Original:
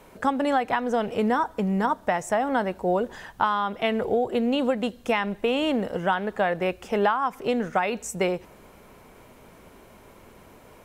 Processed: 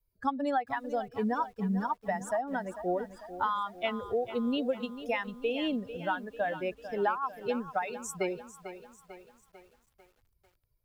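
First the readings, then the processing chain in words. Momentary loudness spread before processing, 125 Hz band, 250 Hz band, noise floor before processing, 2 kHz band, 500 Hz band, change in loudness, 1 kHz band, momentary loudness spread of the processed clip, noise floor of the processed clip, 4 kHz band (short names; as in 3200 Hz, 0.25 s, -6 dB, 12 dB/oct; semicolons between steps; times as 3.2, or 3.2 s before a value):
4 LU, -7.5 dB, -7.5 dB, -51 dBFS, -8.0 dB, -8.0 dB, -7.5 dB, -7.5 dB, 11 LU, -74 dBFS, -8.0 dB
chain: per-bin expansion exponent 2; lo-fi delay 0.446 s, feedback 55%, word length 9-bit, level -12.5 dB; gain -3.5 dB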